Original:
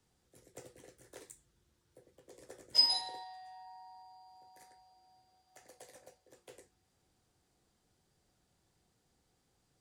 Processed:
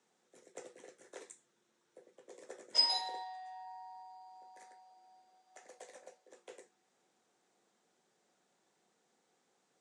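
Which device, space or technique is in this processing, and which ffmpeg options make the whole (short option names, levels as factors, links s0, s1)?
television speaker: -af "highpass=f=230:w=0.5412,highpass=f=230:w=1.3066,equalizer=f=290:t=q:w=4:g=-7,equalizer=f=3000:t=q:w=4:g=-3,equalizer=f=4700:t=q:w=4:g=-8,lowpass=f=7900:w=0.5412,lowpass=f=7900:w=1.3066,volume=1.5"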